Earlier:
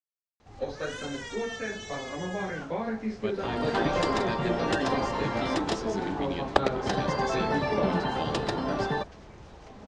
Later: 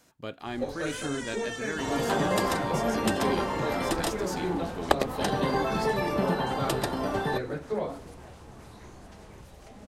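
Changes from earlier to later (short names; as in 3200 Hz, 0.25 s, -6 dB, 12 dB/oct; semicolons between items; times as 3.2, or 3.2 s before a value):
speech: entry -3.00 s; second sound: entry -1.65 s; master: remove LPF 6300 Hz 24 dB/oct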